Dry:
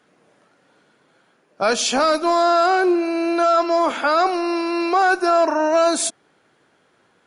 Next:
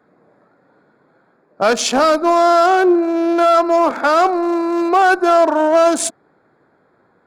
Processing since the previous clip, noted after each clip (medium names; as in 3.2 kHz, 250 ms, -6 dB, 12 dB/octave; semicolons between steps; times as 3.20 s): local Wiener filter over 15 samples; trim +5 dB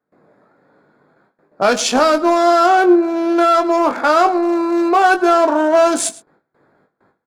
gate with hold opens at -47 dBFS; doubling 20 ms -8 dB; delay 109 ms -19.5 dB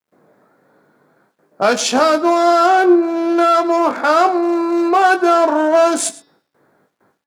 bit crusher 12-bit; high-pass 95 Hz; de-hum 284.6 Hz, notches 20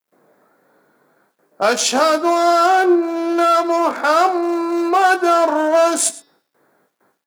high-pass 260 Hz 6 dB/octave; treble shelf 8.7 kHz +8.5 dB; trim -1 dB